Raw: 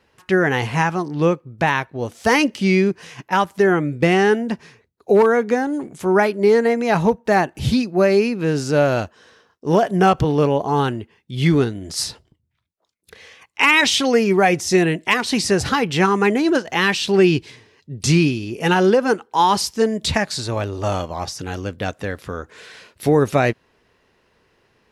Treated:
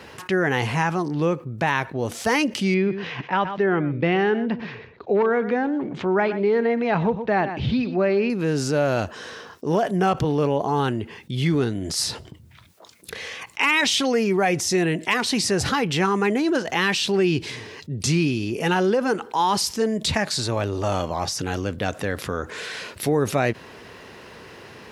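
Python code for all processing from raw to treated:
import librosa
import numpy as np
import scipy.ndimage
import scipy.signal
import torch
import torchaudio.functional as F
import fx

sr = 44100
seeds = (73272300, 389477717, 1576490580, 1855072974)

y = fx.chain(x, sr, fx.lowpass(hz=3700.0, slope=24),
    fx.echo_single(ms=121, db=-18.5), at=(2.74, 8.3))
y = scipy.signal.sosfilt(scipy.signal.butter(2, 79.0, 'highpass', fs=sr, output='sos'), y)
y = fx.env_flatten(y, sr, amount_pct=50)
y = y * 10.0 ** (-7.0 / 20.0)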